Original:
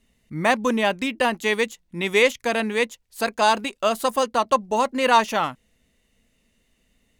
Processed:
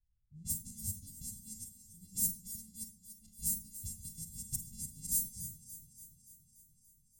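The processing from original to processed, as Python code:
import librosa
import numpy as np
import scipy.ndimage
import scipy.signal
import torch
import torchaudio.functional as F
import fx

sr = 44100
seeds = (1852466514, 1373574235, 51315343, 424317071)

y = np.r_[np.sort(x[:len(x) // 64 * 64].reshape(-1, 64), axis=1).ravel(), x[len(x) // 64 * 64:]]
y = scipy.signal.sosfilt(scipy.signal.ellip(3, 1.0, 70, [110.0, 7900.0], 'bandstop', fs=sr, output='sos'), y)
y = fx.peak_eq(y, sr, hz=2500.0, db=-7.5, octaves=0.2)
y = fx.env_lowpass(y, sr, base_hz=750.0, full_db=-27.5)
y = fx.dynamic_eq(y, sr, hz=3300.0, q=0.79, threshold_db=-50.0, ratio=4.0, max_db=-6)
y = fx.echo_alternate(y, sr, ms=144, hz=980.0, feedback_pct=85, wet_db=-8)
y = fx.rev_schroeder(y, sr, rt60_s=0.32, comb_ms=33, drr_db=4.0)
y = fx.upward_expand(y, sr, threshold_db=-51.0, expansion=1.5)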